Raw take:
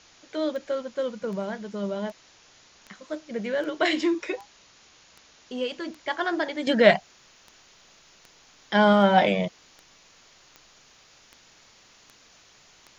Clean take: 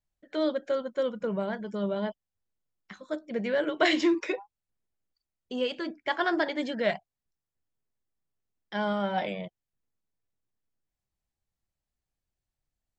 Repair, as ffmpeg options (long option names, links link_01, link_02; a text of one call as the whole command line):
ffmpeg -i in.wav -af "adeclick=threshold=4,afwtdn=0.0028,asetnsamples=nb_out_samples=441:pad=0,asendcmd='6.67 volume volume -11dB',volume=0dB" out.wav